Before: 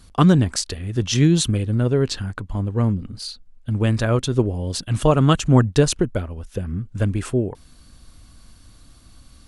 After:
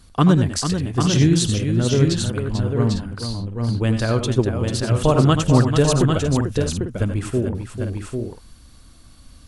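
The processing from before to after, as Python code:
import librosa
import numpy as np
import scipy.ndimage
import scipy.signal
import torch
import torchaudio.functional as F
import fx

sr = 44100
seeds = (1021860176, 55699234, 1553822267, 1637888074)

y = fx.echo_multitap(x, sr, ms=(81, 94, 443, 797, 848), db=(-11.0, -11.5, -8.0, -5.5, -12.0))
y = y * 10.0 ** (-1.0 / 20.0)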